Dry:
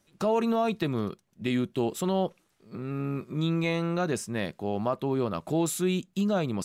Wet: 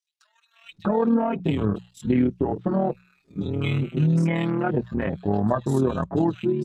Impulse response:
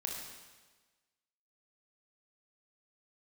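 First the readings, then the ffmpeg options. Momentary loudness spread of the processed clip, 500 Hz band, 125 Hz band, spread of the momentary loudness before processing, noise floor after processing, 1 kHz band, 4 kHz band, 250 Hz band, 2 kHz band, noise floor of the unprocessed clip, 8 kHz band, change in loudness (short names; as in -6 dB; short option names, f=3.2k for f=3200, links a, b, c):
8 LU, +3.0 dB, +7.0 dB, 7 LU, -69 dBFS, +3.0 dB, -3.5 dB, +5.5 dB, +1.5 dB, -70 dBFS, under -10 dB, +5.0 dB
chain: -filter_complex "[0:a]lowpass=4.5k,afwtdn=0.0141,aemphasis=mode=production:type=75fm,acompressor=threshold=-38dB:ratio=2,acrossover=split=2300[a][b];[a]adelay=640[c];[c][b]amix=inputs=2:normalize=0,dynaudnorm=f=100:g=13:m=11.5dB,tremolo=f=39:d=0.71,lowshelf=f=140:g=9,bandreject=f=60:t=h:w=6,bandreject=f=120:t=h:w=6,bandreject=f=180:t=h:w=6,asplit=2[d][e];[e]adelay=6.5,afreqshift=1.1[f];[d][f]amix=inputs=2:normalize=1,volume=6dB"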